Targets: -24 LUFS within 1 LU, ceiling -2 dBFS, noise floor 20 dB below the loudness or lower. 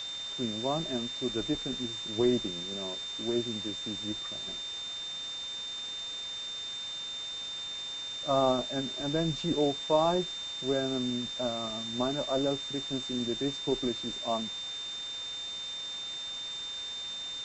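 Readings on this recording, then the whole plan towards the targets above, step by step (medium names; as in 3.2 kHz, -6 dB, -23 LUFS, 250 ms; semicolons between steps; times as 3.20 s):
steady tone 3.6 kHz; tone level -36 dBFS; noise floor -39 dBFS; noise floor target -53 dBFS; loudness -32.5 LUFS; peak level -12.5 dBFS; loudness target -24.0 LUFS
-> band-stop 3.6 kHz, Q 30; noise print and reduce 14 dB; trim +8.5 dB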